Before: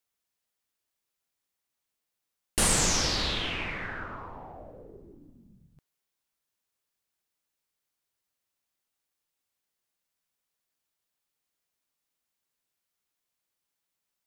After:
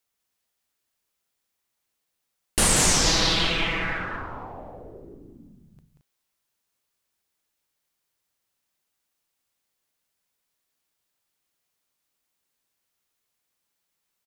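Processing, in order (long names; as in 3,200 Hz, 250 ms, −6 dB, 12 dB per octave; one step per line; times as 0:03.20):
0:03.06–0:03.98: comb filter 6.1 ms, depth 86%
on a send: loudspeakers that aren't time-aligned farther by 63 metres −6 dB, 76 metres −10 dB
on the sum: level +4 dB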